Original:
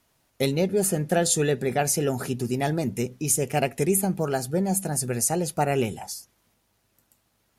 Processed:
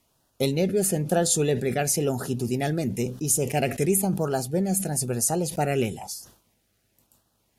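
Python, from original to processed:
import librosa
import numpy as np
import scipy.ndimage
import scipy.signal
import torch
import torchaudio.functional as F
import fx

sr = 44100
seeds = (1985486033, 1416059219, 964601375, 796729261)

y = fx.filter_lfo_notch(x, sr, shape='sine', hz=1.0, low_hz=920.0, high_hz=2300.0, q=1.6)
y = fx.sustainer(y, sr, db_per_s=120.0)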